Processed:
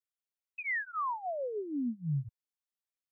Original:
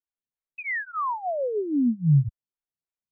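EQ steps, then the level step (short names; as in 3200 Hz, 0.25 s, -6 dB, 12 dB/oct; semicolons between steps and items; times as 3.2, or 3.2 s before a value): tilt shelf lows -3.5 dB; low shelf 120 Hz -10.5 dB; -6.5 dB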